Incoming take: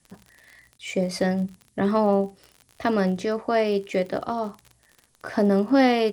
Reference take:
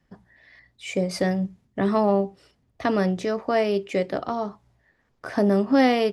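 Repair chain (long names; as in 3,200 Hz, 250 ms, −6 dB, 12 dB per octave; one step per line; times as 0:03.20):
click removal
repair the gap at 0:00.78, 10 ms
downward expander −53 dBFS, range −21 dB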